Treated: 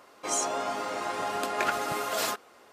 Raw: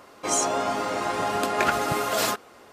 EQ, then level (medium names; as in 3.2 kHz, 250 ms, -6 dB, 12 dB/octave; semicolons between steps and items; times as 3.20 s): bass shelf 200 Hz -10 dB; -4.5 dB